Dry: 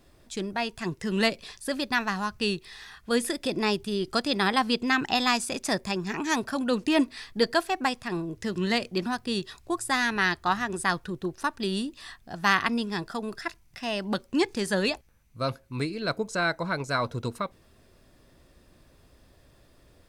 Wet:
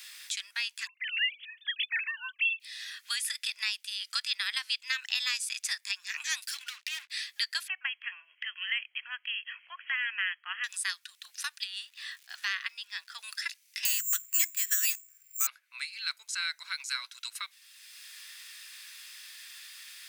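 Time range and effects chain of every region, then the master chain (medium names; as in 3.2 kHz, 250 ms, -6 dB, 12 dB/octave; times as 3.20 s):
0.87–2.60 s: formants replaced by sine waves + tilt EQ +3 dB/octave
6.42–7.10 s: low-pass that closes with the level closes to 1.2 kHz, closed at -22.5 dBFS + differentiator + waveshaping leveller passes 5
7.68–10.64 s: brick-wall FIR low-pass 3.3 kHz + upward compressor, threshold -36 dBFS
11.63–13.19 s: low-pass 1.6 kHz 6 dB/octave + crackle 510 per s -57 dBFS
13.85–15.47 s: treble shelf 3.7 kHz +5 dB + hum notches 60/120/180/240/300 Hz + careless resampling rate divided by 6×, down filtered, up zero stuff
whole clip: inverse Chebyshev high-pass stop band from 320 Hz, stop band 80 dB; three bands compressed up and down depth 70%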